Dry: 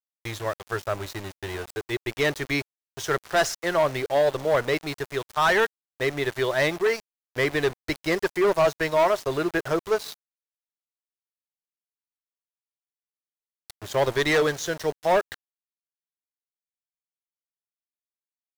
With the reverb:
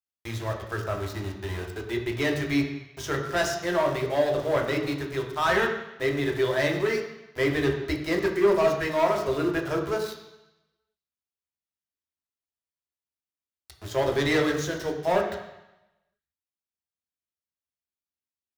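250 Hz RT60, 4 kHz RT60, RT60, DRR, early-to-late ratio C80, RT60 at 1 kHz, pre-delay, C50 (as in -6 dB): 0.85 s, 1.0 s, 0.90 s, 1.0 dB, 8.5 dB, 0.95 s, 3 ms, 6.5 dB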